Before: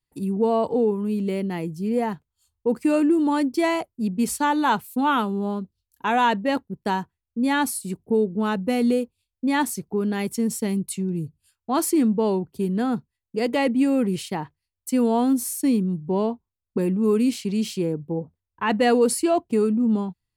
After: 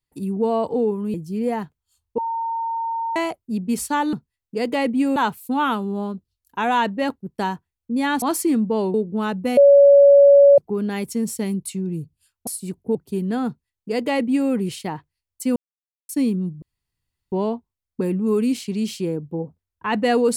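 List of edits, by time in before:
1.14–1.64 s: delete
2.68–3.66 s: bleep 914 Hz -22 dBFS
7.69–8.17 s: swap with 11.70–12.42 s
8.80–9.81 s: bleep 564 Hz -7 dBFS
12.94–13.97 s: copy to 4.63 s
15.03–15.56 s: mute
16.09 s: insert room tone 0.70 s

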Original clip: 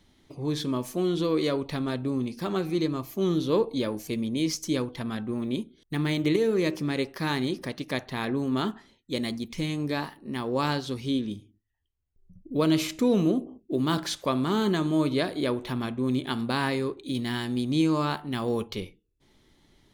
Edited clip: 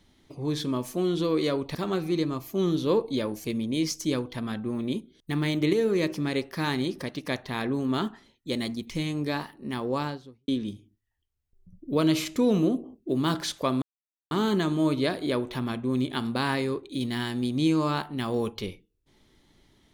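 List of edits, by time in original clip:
1.75–2.38 s: delete
10.41–11.11 s: studio fade out
14.45 s: insert silence 0.49 s

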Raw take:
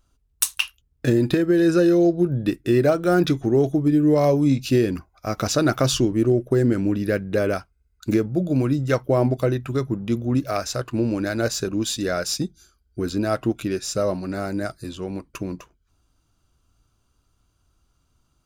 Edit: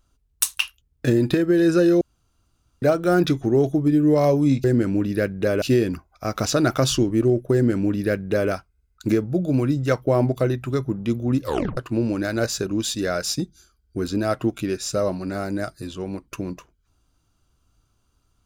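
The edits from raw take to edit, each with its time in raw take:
2.01–2.82 s: room tone
6.55–7.53 s: copy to 4.64 s
10.44 s: tape stop 0.35 s

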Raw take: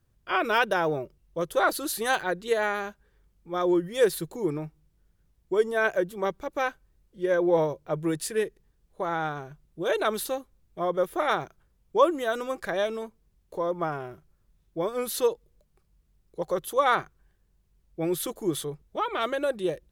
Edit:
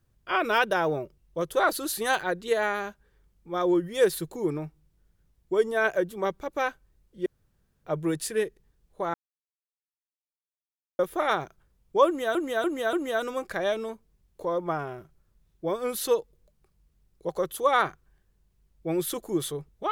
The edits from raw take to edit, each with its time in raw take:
7.26–7.84 s: room tone
9.14–10.99 s: mute
12.06–12.35 s: loop, 4 plays

